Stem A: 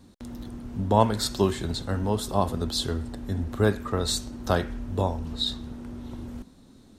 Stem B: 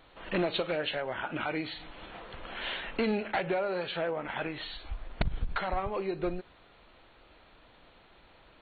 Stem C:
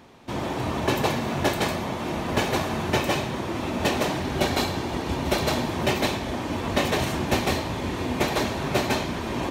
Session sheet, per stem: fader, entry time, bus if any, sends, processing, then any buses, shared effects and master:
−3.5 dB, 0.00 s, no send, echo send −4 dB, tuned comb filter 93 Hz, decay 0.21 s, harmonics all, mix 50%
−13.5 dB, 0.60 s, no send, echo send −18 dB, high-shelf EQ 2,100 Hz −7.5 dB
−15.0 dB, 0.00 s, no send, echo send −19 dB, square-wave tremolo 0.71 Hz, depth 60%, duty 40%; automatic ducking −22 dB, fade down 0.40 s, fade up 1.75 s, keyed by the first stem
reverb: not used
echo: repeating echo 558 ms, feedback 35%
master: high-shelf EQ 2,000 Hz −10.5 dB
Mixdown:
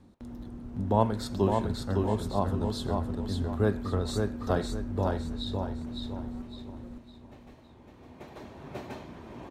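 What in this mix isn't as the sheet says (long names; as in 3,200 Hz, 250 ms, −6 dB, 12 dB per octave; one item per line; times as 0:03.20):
stem A: missing tuned comb filter 93 Hz, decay 0.21 s, harmonics all, mix 50%
stem B −13.5 dB → −22.5 dB
stem C: missing square-wave tremolo 0.71 Hz, depth 60%, duty 40%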